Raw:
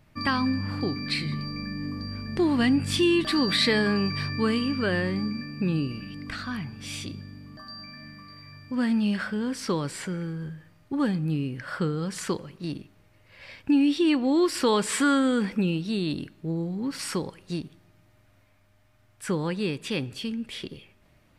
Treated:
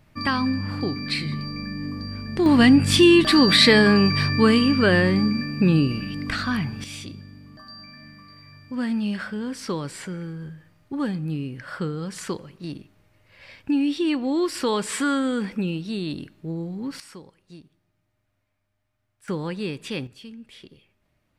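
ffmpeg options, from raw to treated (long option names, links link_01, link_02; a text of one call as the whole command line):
ffmpeg -i in.wav -af "asetnsamples=nb_out_samples=441:pad=0,asendcmd='2.46 volume volume 8dB;6.84 volume volume -1dB;17 volume volume -13.5dB;19.28 volume volume -1dB;20.07 volume volume -9.5dB',volume=2dB" out.wav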